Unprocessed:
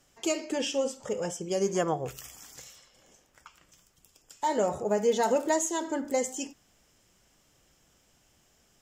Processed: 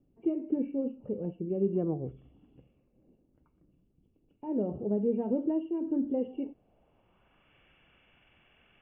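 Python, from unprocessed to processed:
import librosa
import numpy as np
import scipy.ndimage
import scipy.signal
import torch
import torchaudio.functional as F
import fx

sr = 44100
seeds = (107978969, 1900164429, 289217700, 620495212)

y = fx.freq_compress(x, sr, knee_hz=2100.0, ratio=4.0)
y = fx.filter_sweep_lowpass(y, sr, from_hz=290.0, to_hz=1800.0, start_s=6.07, end_s=7.56, q=1.7)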